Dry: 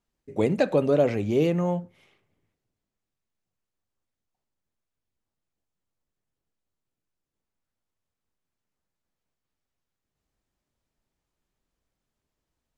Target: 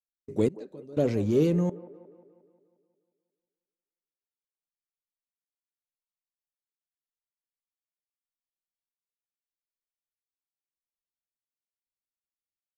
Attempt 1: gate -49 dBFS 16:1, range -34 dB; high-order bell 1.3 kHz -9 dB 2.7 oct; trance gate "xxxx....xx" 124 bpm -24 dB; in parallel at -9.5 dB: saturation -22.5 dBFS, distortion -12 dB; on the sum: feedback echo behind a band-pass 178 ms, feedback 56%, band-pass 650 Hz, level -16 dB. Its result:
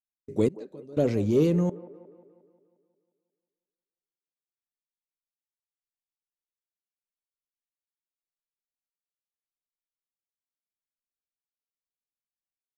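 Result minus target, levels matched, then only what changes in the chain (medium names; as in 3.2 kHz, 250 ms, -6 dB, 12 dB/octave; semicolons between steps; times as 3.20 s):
saturation: distortion -7 dB
change: saturation -34.5 dBFS, distortion -5 dB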